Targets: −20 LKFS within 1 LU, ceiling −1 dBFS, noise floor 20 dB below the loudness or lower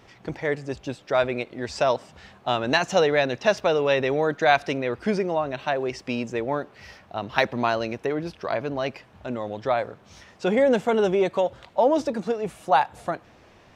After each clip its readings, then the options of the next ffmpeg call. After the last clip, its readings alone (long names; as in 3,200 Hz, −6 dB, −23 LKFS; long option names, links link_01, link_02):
integrated loudness −24.5 LKFS; sample peak −2.0 dBFS; target loudness −20.0 LKFS
→ -af "volume=4.5dB,alimiter=limit=-1dB:level=0:latency=1"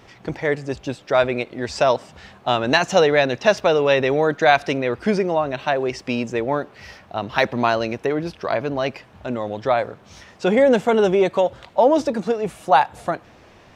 integrated loudness −20.5 LKFS; sample peak −1.0 dBFS; background noise floor −49 dBFS